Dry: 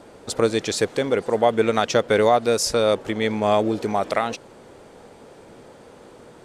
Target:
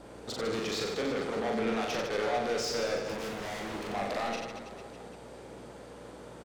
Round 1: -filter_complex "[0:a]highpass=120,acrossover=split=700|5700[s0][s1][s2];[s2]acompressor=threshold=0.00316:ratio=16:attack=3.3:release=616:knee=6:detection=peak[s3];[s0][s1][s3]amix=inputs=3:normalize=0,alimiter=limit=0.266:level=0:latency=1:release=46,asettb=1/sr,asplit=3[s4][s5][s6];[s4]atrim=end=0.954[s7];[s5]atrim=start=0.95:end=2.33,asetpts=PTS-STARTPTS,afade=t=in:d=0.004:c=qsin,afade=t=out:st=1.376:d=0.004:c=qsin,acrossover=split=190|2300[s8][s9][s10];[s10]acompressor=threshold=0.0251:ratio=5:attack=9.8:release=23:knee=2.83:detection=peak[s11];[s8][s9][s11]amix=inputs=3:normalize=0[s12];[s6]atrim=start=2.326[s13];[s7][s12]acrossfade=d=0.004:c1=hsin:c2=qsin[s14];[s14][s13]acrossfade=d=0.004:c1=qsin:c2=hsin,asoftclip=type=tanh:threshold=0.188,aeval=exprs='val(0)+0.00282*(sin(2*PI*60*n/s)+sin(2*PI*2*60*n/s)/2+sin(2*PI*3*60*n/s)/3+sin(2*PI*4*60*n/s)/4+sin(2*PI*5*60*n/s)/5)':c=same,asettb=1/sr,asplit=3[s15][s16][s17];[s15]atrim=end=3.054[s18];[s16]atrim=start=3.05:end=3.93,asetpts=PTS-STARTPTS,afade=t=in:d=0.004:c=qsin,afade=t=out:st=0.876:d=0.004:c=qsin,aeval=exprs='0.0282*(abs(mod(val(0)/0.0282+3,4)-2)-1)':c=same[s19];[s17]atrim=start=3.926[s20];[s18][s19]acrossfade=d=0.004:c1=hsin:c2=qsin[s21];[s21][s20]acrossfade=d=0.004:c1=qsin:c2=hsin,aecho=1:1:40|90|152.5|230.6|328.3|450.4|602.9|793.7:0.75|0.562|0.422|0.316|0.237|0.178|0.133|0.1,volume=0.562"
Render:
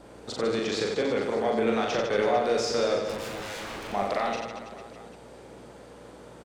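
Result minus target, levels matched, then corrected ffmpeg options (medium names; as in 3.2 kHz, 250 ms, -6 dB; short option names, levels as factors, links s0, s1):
saturation: distortion -11 dB
-filter_complex "[0:a]highpass=120,acrossover=split=700|5700[s0][s1][s2];[s2]acompressor=threshold=0.00316:ratio=16:attack=3.3:release=616:knee=6:detection=peak[s3];[s0][s1][s3]amix=inputs=3:normalize=0,alimiter=limit=0.266:level=0:latency=1:release=46,asettb=1/sr,asplit=3[s4][s5][s6];[s4]atrim=end=0.954[s7];[s5]atrim=start=0.95:end=2.33,asetpts=PTS-STARTPTS,afade=t=in:d=0.004:c=qsin,afade=t=out:st=1.376:d=0.004:c=qsin,acrossover=split=190|2300[s8][s9][s10];[s10]acompressor=threshold=0.0251:ratio=5:attack=9.8:release=23:knee=2.83:detection=peak[s11];[s8][s9][s11]amix=inputs=3:normalize=0[s12];[s6]atrim=start=2.326[s13];[s7][s12]acrossfade=d=0.004:c1=hsin:c2=qsin[s14];[s14][s13]acrossfade=d=0.004:c1=qsin:c2=hsin,asoftclip=type=tanh:threshold=0.0501,aeval=exprs='val(0)+0.00282*(sin(2*PI*60*n/s)+sin(2*PI*2*60*n/s)/2+sin(2*PI*3*60*n/s)/3+sin(2*PI*4*60*n/s)/4+sin(2*PI*5*60*n/s)/5)':c=same,asettb=1/sr,asplit=3[s15][s16][s17];[s15]atrim=end=3.054[s18];[s16]atrim=start=3.05:end=3.93,asetpts=PTS-STARTPTS,afade=t=in:d=0.004:c=qsin,afade=t=out:st=0.876:d=0.004:c=qsin,aeval=exprs='0.0282*(abs(mod(val(0)/0.0282+3,4)-2)-1)':c=same[s19];[s17]atrim=start=3.926[s20];[s18][s19]acrossfade=d=0.004:c1=hsin:c2=qsin[s21];[s21][s20]acrossfade=d=0.004:c1=qsin:c2=hsin,aecho=1:1:40|90|152.5|230.6|328.3|450.4|602.9|793.7:0.75|0.562|0.422|0.316|0.237|0.178|0.133|0.1,volume=0.562"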